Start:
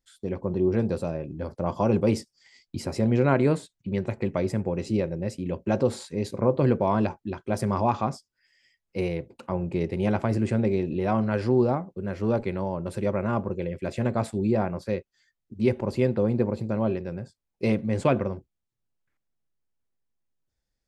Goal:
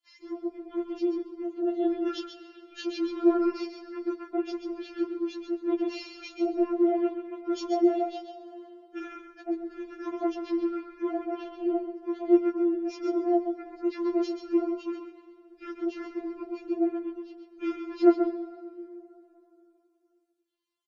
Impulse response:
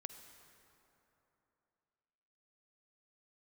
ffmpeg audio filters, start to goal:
-filter_complex "[0:a]highpass=f=140:w=0.5412,highpass=f=140:w=1.3066,asetrate=26222,aresample=44100,atempo=1.68179,asplit=2[a][b];[b]adelay=134.1,volume=-16dB,highshelf=f=4k:g=-3.02[c];[a][c]amix=inputs=2:normalize=0,asplit=2[d][e];[1:a]atrim=start_sample=2205,adelay=135[f];[e][f]afir=irnorm=-1:irlink=0,volume=-3.5dB[g];[d][g]amix=inputs=2:normalize=0,afftfilt=real='re*4*eq(mod(b,16),0)':imag='im*4*eq(mod(b,16),0)':win_size=2048:overlap=0.75,volume=2dB"

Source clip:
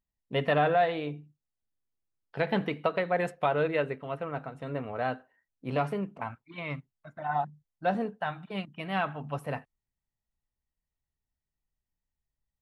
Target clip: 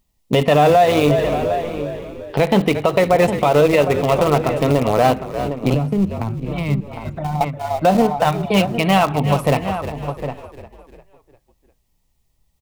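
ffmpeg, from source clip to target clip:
-filter_complex "[0:a]asplit=2[a][b];[b]aeval=exprs='val(0)*gte(abs(val(0)),0.0335)':c=same,volume=-5dB[c];[a][c]amix=inputs=2:normalize=0,equalizer=f=1.6k:w=3.1:g=-11.5,asplit=2[d][e];[e]asplit=4[f][g][h][i];[f]adelay=350,afreqshift=-48,volume=-17.5dB[j];[g]adelay=700,afreqshift=-96,volume=-24.1dB[k];[h]adelay=1050,afreqshift=-144,volume=-30.6dB[l];[i]adelay=1400,afreqshift=-192,volume=-37.2dB[m];[j][k][l][m]amix=inputs=4:normalize=0[n];[d][n]amix=inputs=2:normalize=0,acompressor=threshold=-30dB:ratio=5,asplit=2[o][p];[p]adelay=758,volume=-11dB,highshelf=f=4k:g=-17.1[q];[o][q]amix=inputs=2:normalize=0,asettb=1/sr,asplit=3[r][s][t];[r]atrim=end=5.744[u];[s]atrim=start=5.74:end=7.41,asetpts=PTS-STARTPTS,afade=t=in:d=0.004:c=qsin,afade=t=out:st=1.666:d=0.004:c=qsin,acrossover=split=270[v][w];[w]acompressor=threshold=-53dB:ratio=3[x];[v][x]amix=inputs=2:normalize=0[y];[t]atrim=start=7.406[z];[u][y]acrossfade=d=0.004:c1=hsin:c2=qsin[aa];[aa][z]acrossfade=d=0.004:c1=qsin:c2=hsin,alimiter=level_in=24.5dB:limit=-1dB:release=50:level=0:latency=1,volume=-3.5dB"

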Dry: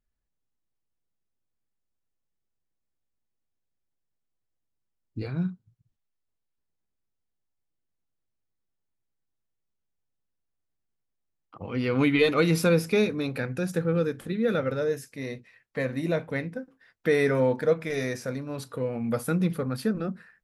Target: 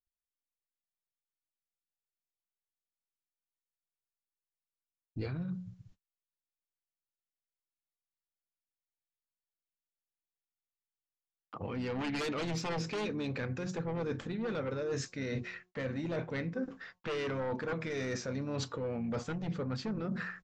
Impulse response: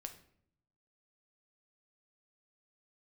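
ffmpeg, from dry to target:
-filter_complex "[0:a]aresample=16000,aresample=44100,aeval=exprs='0.355*sin(PI/2*3.55*val(0)/0.355)':c=same,alimiter=limit=-13.5dB:level=0:latency=1:release=125,asplit=2[a][b];[b]asetrate=33038,aresample=44100,atempo=1.33484,volume=-13dB[c];[a][c]amix=inputs=2:normalize=0,areverse,acompressor=threshold=-31dB:ratio=16,areverse,bandreject=f=181.2:t=h:w=4,bandreject=f=362.4:t=h:w=4,bandreject=f=543.6:t=h:w=4,bandreject=f=724.8:t=h:w=4,bandreject=f=906:t=h:w=4,bandreject=f=1.0872k:t=h:w=4,agate=range=-36dB:threshold=-57dB:ratio=16:detection=peak,volume=-2dB"

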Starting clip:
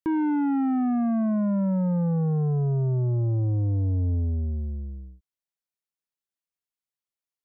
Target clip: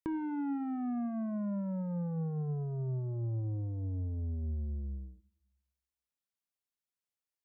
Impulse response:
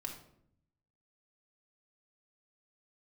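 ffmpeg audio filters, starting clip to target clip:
-filter_complex "[0:a]acompressor=threshold=-32dB:ratio=6,asplit=2[a][b];[1:a]atrim=start_sample=2205,adelay=25[c];[b][c]afir=irnorm=-1:irlink=0,volume=-16dB[d];[a][d]amix=inputs=2:normalize=0,volume=-3.5dB"

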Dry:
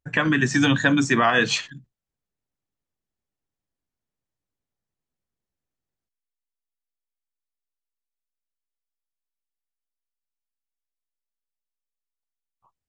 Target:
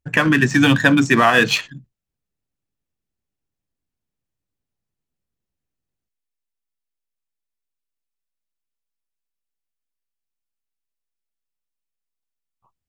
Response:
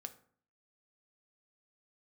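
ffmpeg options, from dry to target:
-filter_complex "[0:a]asplit=2[a][b];[b]adynamicsmooth=sensitivity=5.5:basefreq=510,volume=-2dB[c];[a][c]amix=inputs=2:normalize=0,equalizer=f=2.6k:w=5.7:g=3"

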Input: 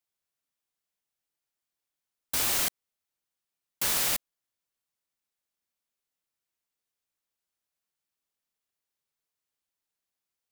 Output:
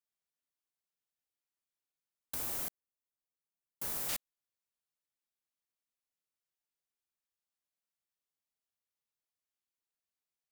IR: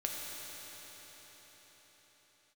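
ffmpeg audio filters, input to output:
-filter_complex "[0:a]asettb=1/sr,asplit=3[a][b][c];[a]atrim=end=2.344[d];[b]atrim=start=2.34:end=4.09,asetpts=PTS-STARTPTS,afade=t=in:d=0.004:c=qsin,afade=t=out:st=1.746:d=0.004:c=qsin,equalizer=f=3.4k:t=o:w=2.7:g=-11[e];[c]atrim=start=4.086[f];[d][e]acrossfade=d=0.004:c1=hsin:c2=qsin[g];[g][f]acrossfade=d=0.004:c1=qsin:c2=hsin,volume=-8dB"

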